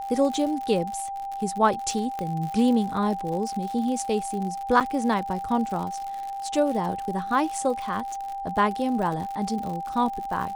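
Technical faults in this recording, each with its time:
crackle 87/s -31 dBFS
tone 790 Hz -30 dBFS
2.19 pop -18 dBFS
4.8–4.81 gap 7.5 ms

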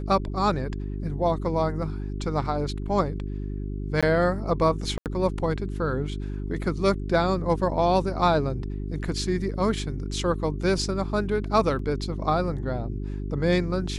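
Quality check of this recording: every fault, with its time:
hum 50 Hz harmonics 8 -31 dBFS
4.01–4.03 gap 16 ms
4.98–5.06 gap 78 ms
11.79 gap 3 ms

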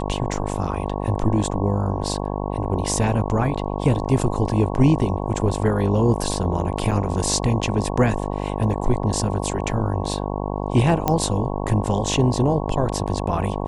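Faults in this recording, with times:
buzz 50 Hz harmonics 22 -26 dBFS
6.91–6.92 gap 6.7 ms
11.08 pop -6 dBFS

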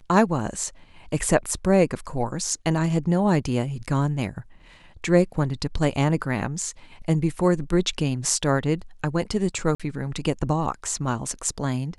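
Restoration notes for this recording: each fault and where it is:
9.75–9.8 gap 46 ms

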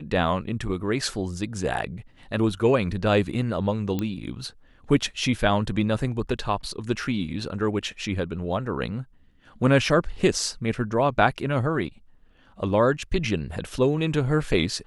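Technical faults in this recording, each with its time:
3.99 pop -14 dBFS

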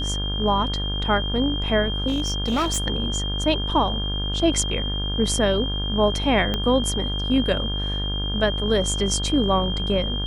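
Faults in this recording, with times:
buzz 50 Hz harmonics 35 -27 dBFS
tone 3200 Hz -28 dBFS
2.07–2.79 clipped -18.5 dBFS
6.54 pop -11 dBFS

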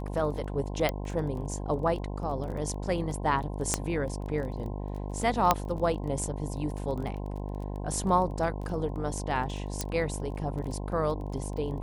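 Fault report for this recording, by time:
buzz 50 Hz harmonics 21 -35 dBFS
crackle 17/s -37 dBFS
0.89 pop -13 dBFS
3.74 pop -10 dBFS
5.51 pop -6 dBFS
9.81 pop -14 dBFS

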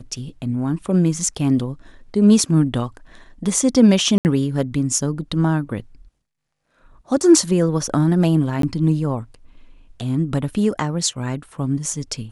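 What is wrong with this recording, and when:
4.18–4.25 gap 69 ms
8.62–8.63 gap 13 ms

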